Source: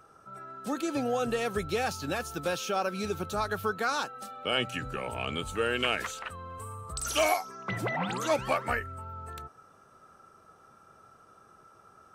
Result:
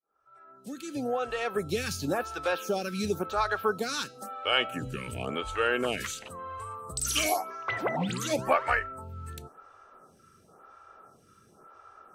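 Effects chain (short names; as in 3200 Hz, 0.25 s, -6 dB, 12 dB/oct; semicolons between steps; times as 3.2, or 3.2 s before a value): opening faded in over 1.97 s; de-hum 323.6 Hz, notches 36; photocell phaser 0.95 Hz; gain +5 dB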